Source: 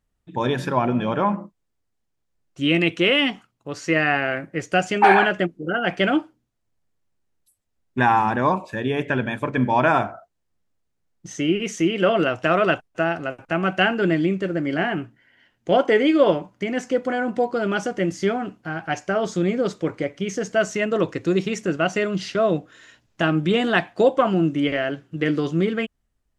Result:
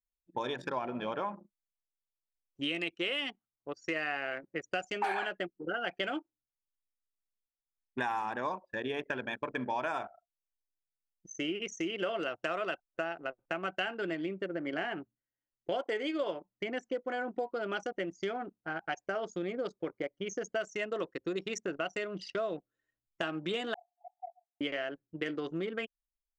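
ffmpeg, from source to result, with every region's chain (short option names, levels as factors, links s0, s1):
-filter_complex "[0:a]asettb=1/sr,asplit=3[s0][s1][s2];[s0]atrim=end=23.744[s3];[s1]atrim=start=23.74:end=24.61,asetpts=PTS-STARTPTS,afade=t=in:d=0.004:c=qsin,afade=t=out:st=0.866:d=0.004:c=qsin,acompressor=threshold=0.0447:ratio=4:attack=3.2:release=140:knee=1:detection=peak,asuperpass=centerf=760:order=20:qfactor=4.1[s4];[s2]atrim=start=24.606[s5];[s3][s4]acrossfade=d=0.004:c1=hsin:c2=qsin[s6];[s6][s5]acrossfade=d=0.004:c1=qsin:c2=hsin,anlmdn=100,bass=f=250:g=-14,treble=f=4000:g=11,acompressor=threshold=0.0398:ratio=4,volume=0.596"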